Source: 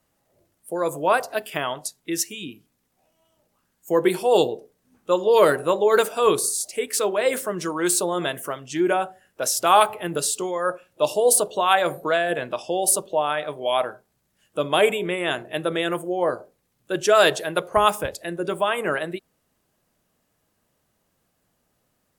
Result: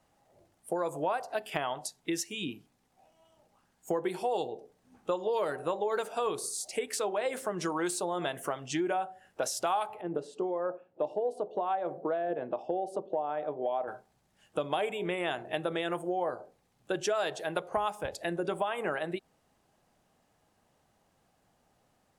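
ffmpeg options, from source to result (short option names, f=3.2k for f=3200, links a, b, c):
-filter_complex "[0:a]asettb=1/sr,asplit=3[a][b][c];[a]atrim=end=10.014[d];[b]atrim=start=10.01:end=13.88,asetpts=PTS-STARTPTS,afade=t=in:d=0.004:c=qsin,afade=t=out:st=3.866:d=0.004:c=qsin,bandpass=f=350:t=q:w=0.94[e];[c]atrim=start=13.876[f];[d][e]acrossfade=d=0.004:c1=hsin:c2=qsin[g];[g][f]acrossfade=d=0.004:c1=qsin:c2=hsin,equalizer=f=790:t=o:w=0.42:g=8,acompressor=threshold=-29dB:ratio=6,equalizer=f=16k:t=o:w=0.66:g=-15"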